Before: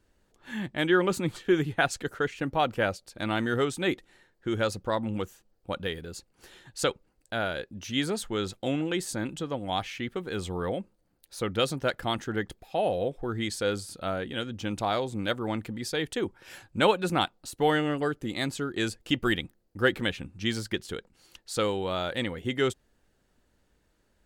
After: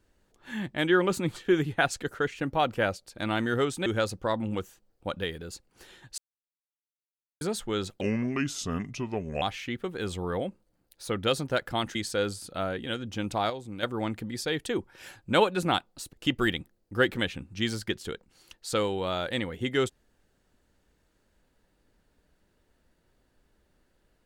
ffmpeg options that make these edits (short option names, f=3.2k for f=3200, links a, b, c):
-filter_complex "[0:a]asplit=10[a][b][c][d][e][f][g][h][i][j];[a]atrim=end=3.862[k];[b]atrim=start=4.488:end=6.81,asetpts=PTS-STARTPTS,afade=t=out:st=2.318:d=0.004:c=hsin[l];[c]atrim=start=6.81:end=8.04,asetpts=PTS-STARTPTS,volume=0[m];[d]atrim=start=8.04:end=8.644,asetpts=PTS-STARTPTS,afade=t=in:d=0.004:c=hsin[n];[e]atrim=start=8.64:end=9.74,asetpts=PTS-STARTPTS,asetrate=34398,aresample=44100,atrim=end_sample=62192,asetpts=PTS-STARTPTS[o];[f]atrim=start=9.736:end=12.272[p];[g]atrim=start=13.418:end=14.972[q];[h]atrim=start=14.968:end=15.302,asetpts=PTS-STARTPTS,volume=-7dB[r];[i]atrim=start=15.298:end=17.602[s];[j]atrim=start=18.968[t];[l][m][n]concat=n=3:v=0:a=1[u];[k][u]acrossfade=d=0.004:c1=hsin:c2=hsin[v];[v][o]acrossfade=d=0.004:c1=hsin:c2=hsin[w];[w][p]acrossfade=d=0.004:c1=hsin:c2=hsin[x];[x][q]acrossfade=d=0.004:c1=hsin:c2=hsin[y];[y][r]acrossfade=d=0.004:c1=hsin:c2=hsin[z];[z][s]acrossfade=d=0.004:c1=hsin:c2=hsin[aa];[aa][t]acrossfade=d=0.004:c1=hsin:c2=hsin"